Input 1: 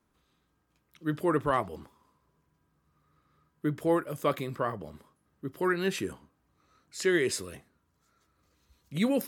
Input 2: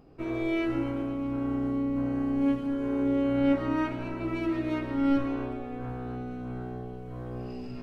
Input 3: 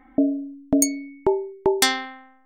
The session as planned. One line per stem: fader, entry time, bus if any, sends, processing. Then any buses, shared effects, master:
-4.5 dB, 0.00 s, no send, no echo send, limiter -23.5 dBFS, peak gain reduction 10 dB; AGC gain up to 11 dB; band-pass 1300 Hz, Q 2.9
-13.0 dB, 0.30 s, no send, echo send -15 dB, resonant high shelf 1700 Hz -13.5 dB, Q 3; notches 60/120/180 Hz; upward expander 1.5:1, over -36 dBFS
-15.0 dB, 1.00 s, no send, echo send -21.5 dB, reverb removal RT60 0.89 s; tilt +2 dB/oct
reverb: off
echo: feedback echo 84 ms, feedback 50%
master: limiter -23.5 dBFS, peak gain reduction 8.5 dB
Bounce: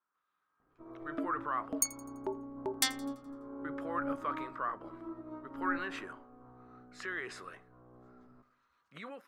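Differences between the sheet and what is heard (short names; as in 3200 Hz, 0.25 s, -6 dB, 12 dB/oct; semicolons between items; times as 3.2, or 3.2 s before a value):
stem 2: entry 0.30 s -> 0.60 s; master: missing limiter -23.5 dBFS, peak gain reduction 8.5 dB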